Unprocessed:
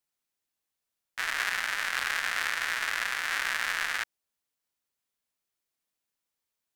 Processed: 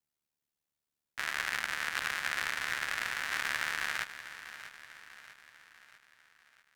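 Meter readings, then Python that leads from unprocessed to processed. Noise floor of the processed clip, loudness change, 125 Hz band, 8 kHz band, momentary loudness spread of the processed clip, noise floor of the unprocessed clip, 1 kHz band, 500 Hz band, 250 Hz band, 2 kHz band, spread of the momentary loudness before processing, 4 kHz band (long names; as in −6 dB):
below −85 dBFS, −4.5 dB, can't be measured, −4.0 dB, 18 LU, below −85 dBFS, −4.0 dB, −2.5 dB, +0.5 dB, −4.0 dB, 5 LU, −4.0 dB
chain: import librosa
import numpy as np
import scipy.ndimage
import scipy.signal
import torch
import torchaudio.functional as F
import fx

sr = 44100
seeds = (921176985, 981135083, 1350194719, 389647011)

y = scipy.signal.sosfilt(scipy.signal.butter(2, 65.0, 'highpass', fs=sr, output='sos'), x)
y = fx.low_shelf(y, sr, hz=230.0, db=11.0)
y = y * np.sin(2.0 * np.pi * 37.0 * np.arange(len(y)) / sr)
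y = fx.echo_feedback(y, sr, ms=644, feedback_pct=51, wet_db=-13)
y = F.gain(torch.from_numpy(y), -1.5).numpy()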